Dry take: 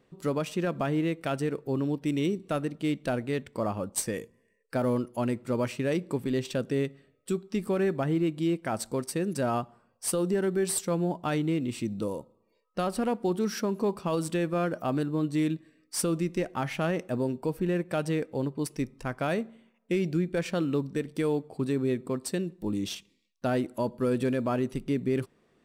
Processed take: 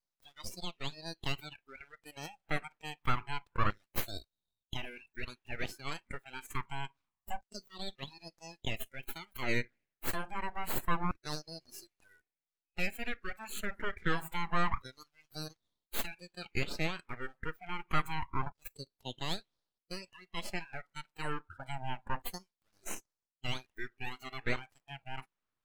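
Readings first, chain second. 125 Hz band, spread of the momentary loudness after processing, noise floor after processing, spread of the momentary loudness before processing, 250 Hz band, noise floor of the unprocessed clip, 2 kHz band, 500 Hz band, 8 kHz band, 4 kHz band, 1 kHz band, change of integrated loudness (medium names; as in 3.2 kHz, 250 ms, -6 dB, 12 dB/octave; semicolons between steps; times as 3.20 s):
-11.0 dB, 13 LU, under -85 dBFS, 6 LU, -17.5 dB, -70 dBFS, 0.0 dB, -17.0 dB, -12.0 dB, -0.5 dB, -3.5 dB, -10.0 dB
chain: LFO high-pass saw down 0.27 Hz 540–2400 Hz; full-wave rectifier; spectral noise reduction 19 dB; trim -1.5 dB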